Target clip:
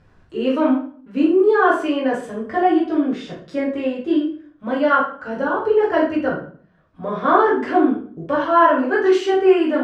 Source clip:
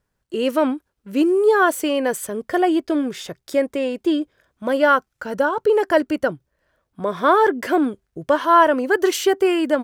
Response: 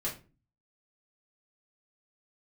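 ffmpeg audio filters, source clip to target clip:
-filter_complex "[0:a]acompressor=mode=upward:threshold=0.0141:ratio=2.5,lowpass=3600[s0];[1:a]atrim=start_sample=2205,asetrate=26901,aresample=44100[s1];[s0][s1]afir=irnorm=-1:irlink=0,volume=0.447"

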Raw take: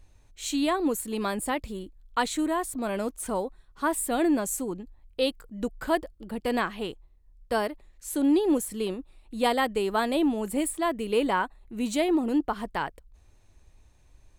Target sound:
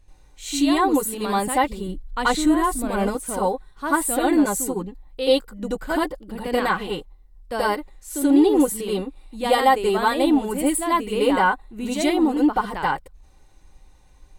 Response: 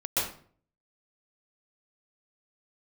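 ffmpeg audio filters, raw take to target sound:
-filter_complex "[0:a]asettb=1/sr,asplit=3[s0][s1][s2];[s0]atrim=end=1.804[s3];[s1]atrim=start=1.8:end=3.07,asetpts=PTS-STARTPTS,afade=t=in:d=0.004:c=qsin,afade=t=out:st=1.266:d=0.004:c=qsin,lowshelf=f=160:g=10.5[s4];[s2]atrim=start=3.066[s5];[s3][s4]acrossfade=d=0.004:c1=hsin:c2=qsin[s6];[s6][s5]acrossfade=d=0.004:c1=qsin:c2=hsin[s7];[1:a]atrim=start_sample=2205,afade=t=out:st=0.18:d=0.01,atrim=end_sample=8379,asetrate=66150,aresample=44100[s8];[s7][s8]afir=irnorm=-1:irlink=0,alimiter=level_in=3.35:limit=0.891:release=50:level=0:latency=1,volume=0.501"

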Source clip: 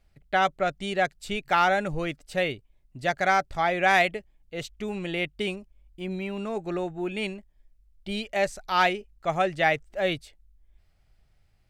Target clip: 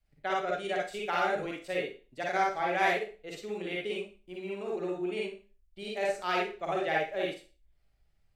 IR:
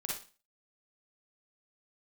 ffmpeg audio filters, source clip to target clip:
-filter_complex "[0:a]adynamicequalizer=threshold=0.00631:dfrequency=410:dqfactor=2.7:tfrequency=410:tqfactor=2.7:attack=5:release=100:ratio=0.375:range=3.5:mode=boostabove:tftype=bell,acrossover=split=200|2800[s0][s1][s2];[s0]acompressor=threshold=0.00224:ratio=20[s3];[s3][s1][s2]amix=inputs=3:normalize=0,atempo=1.4[s4];[1:a]atrim=start_sample=2205[s5];[s4][s5]afir=irnorm=-1:irlink=0,volume=0.422"

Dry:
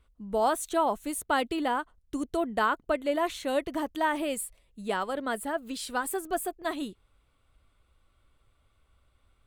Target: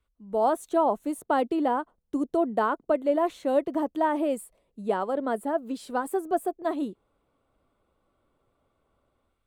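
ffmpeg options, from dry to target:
-filter_complex "[0:a]lowshelf=f=160:g=-3.5,acrossover=split=150|1000|5200[s0][s1][s2][s3];[s1]dynaudnorm=f=130:g=5:m=5.96[s4];[s0][s4][s2][s3]amix=inputs=4:normalize=0,volume=0.355"

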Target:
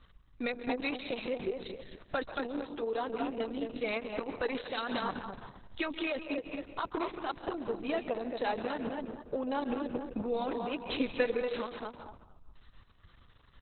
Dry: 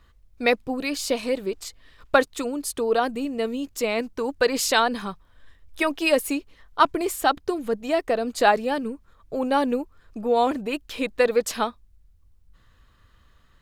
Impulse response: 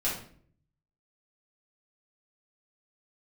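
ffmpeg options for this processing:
-filter_complex "[0:a]asplit=2[s0][s1];[s1]adelay=228,lowpass=f=2800:p=1,volume=0.355,asplit=2[s2][s3];[s3]adelay=228,lowpass=f=2800:p=1,volume=0.23,asplit=2[s4][s5];[s5]adelay=228,lowpass=f=2800:p=1,volume=0.23[s6];[s0][s2][s4][s6]amix=inputs=4:normalize=0,alimiter=limit=0.188:level=0:latency=1:release=29,asplit=3[s7][s8][s9];[s7]afade=t=out:st=9.52:d=0.02[s10];[s8]acontrast=44,afade=t=in:st=9.52:d=0.02,afade=t=out:st=10.24:d=0.02[s11];[s9]afade=t=in:st=10.24:d=0.02[s12];[s10][s11][s12]amix=inputs=3:normalize=0,equalizer=f=12000:t=o:w=1.2:g=14,acompressor=threshold=0.0398:ratio=6,asettb=1/sr,asplit=3[s13][s14][s15];[s13]atrim=end=2.774[s16];[s14]atrim=start=2.77:end=3.57,asetpts=PTS-STARTPTS,afade=t=in:d=0.004:c=qsin,afade=t=out:st=0.796:d=0.004:c=qsin,bandreject=f=60:t=h:w=6,bandreject=f=120:t=h:w=6,bandreject=f=180:t=h:w=6,bandreject=f=240:t=h:w=6,bandreject=f=300:t=h:w=6,bandreject=f=360:t=h:w=6,bandreject=f=420:t=h:w=6,bandreject=f=480:t=h:w=6,bandreject=f=540:t=h:w=6,bandreject=f=600:t=h:w=6[s17];[s15]atrim=start=3.566[s18];[s16][s17]acrossfade=d=0.004:c1=hsin:c2=qsin[s19];[s19][s18]acrossfade=d=0.004:c1=qsin:c2=hsin,asplit=3[s20][s21][s22];[s20]afade=t=out:st=10.98:d=0.02[s23];[s21]aecho=1:1:4:0.75,afade=t=in:st=10.98:d=0.02,afade=t=out:st=11.51:d=0.02[s24];[s22]afade=t=in:st=11.51:d=0.02[s25];[s23][s24][s25]amix=inputs=3:normalize=0,asplit=2[s26][s27];[s27]equalizer=f=1000:t=o:w=0.24:g=11.5[s28];[1:a]atrim=start_sample=2205,afade=t=out:st=0.23:d=0.01,atrim=end_sample=10584,adelay=132[s29];[s28][s29]afir=irnorm=-1:irlink=0,volume=0.112[s30];[s26][s30]amix=inputs=2:normalize=0,volume=0.794" -ar 48000 -c:a libopus -b:a 6k

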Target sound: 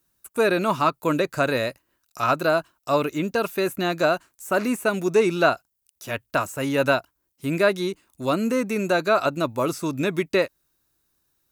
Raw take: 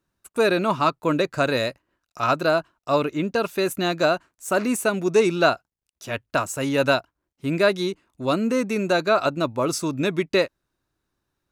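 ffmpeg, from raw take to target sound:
-filter_complex "[0:a]aemphasis=mode=production:type=75fm,acrossover=split=2600[s0][s1];[s1]acompressor=threshold=0.0126:ratio=4:attack=1:release=60[s2];[s0][s2]amix=inputs=2:normalize=0"

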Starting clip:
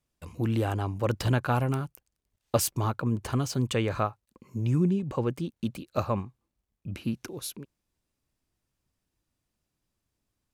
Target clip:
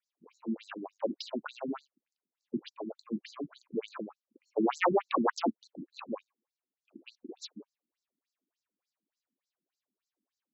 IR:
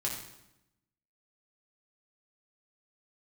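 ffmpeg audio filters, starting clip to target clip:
-filter_complex "[0:a]asplit=3[s0][s1][s2];[s0]afade=t=out:st=4.56:d=0.02[s3];[s1]aeval=exprs='0.158*sin(PI/2*5.62*val(0)/0.158)':c=same,afade=t=in:st=4.56:d=0.02,afade=t=out:st=5.52:d=0.02[s4];[s2]afade=t=in:st=5.52:d=0.02[s5];[s3][s4][s5]amix=inputs=3:normalize=0,afftfilt=real='re*between(b*sr/1024,240*pow(5700/240,0.5+0.5*sin(2*PI*3.4*pts/sr))/1.41,240*pow(5700/240,0.5+0.5*sin(2*PI*3.4*pts/sr))*1.41)':imag='im*between(b*sr/1024,240*pow(5700/240,0.5+0.5*sin(2*PI*3.4*pts/sr))/1.41,240*pow(5700/240,0.5+0.5*sin(2*PI*3.4*pts/sr))*1.41)':win_size=1024:overlap=0.75"

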